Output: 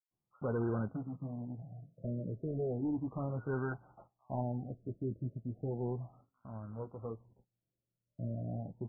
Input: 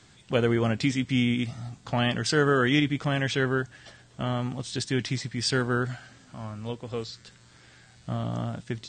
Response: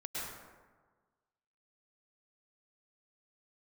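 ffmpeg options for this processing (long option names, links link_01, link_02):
-filter_complex "[0:a]agate=range=-24dB:threshold=-48dB:ratio=16:detection=peak,asettb=1/sr,asplit=3[link_01][link_02][link_03];[link_01]atrim=end=3.604[link_04];[link_02]atrim=start=3.6:end=4.3,asetpts=PTS-STARTPTS,afade=type=in:duration=0.004:curve=qsin,afade=type=out:start_time=0.696:duration=0.004:curve=qsin,equalizer=frequency=810:width=2.2:gain=12[link_05];[link_03]atrim=start=4.296[link_06];[link_04][link_05]acrossfade=duration=0.004:curve1=hsin:curve2=qsin[link_07];[link_07][link_06]acrossfade=duration=0.004:curve1=qsin:curve2=hsin,asoftclip=type=hard:threshold=-23dB,asettb=1/sr,asplit=3[link_08][link_09][link_10];[link_08]atrim=end=0.804[link_11];[link_09]atrim=start=0.8:end=1.94,asetpts=PTS-STARTPTS,afade=type=in:duration=0.004:curve=qsin,afade=type=out:start_time=1.136:duration=0.004:curve=qsin,highpass=150,equalizer=frequency=150:width_type=q:width=4:gain=9,equalizer=frequency=230:width_type=q:width=4:gain=-9,equalizer=frequency=370:width_type=q:width=4:gain=-9,equalizer=frequency=890:width_type=q:width=4:gain=-3,equalizer=frequency=1300:width_type=q:width=4:gain=-6,lowpass=frequency=2900:width=0.5412,lowpass=frequency=2900:width=1.3066[link_12];[link_10]atrim=start=1.936[link_13];[link_11][link_12]acrossfade=duration=0.004:curve1=hsin:curve2=qsin[link_14];[link_14][link_13]acrossfade=duration=0.004:curve1=qsin:curve2=hsin,acrusher=bits=3:mode=log:mix=0:aa=0.000001,flanger=delay=5.6:depth=4.8:regen=-48:speed=0.52:shape=sinusoidal,acrossover=split=2000[link_15][link_16];[link_15]adelay=110[link_17];[link_17][link_16]amix=inputs=2:normalize=0,afftfilt=real='re*lt(b*sr/1024,640*pow(1600/640,0.5+0.5*sin(2*PI*0.34*pts/sr)))':imag='im*lt(b*sr/1024,640*pow(1600/640,0.5+0.5*sin(2*PI*0.34*pts/sr)))':win_size=1024:overlap=0.75,volume=-5dB"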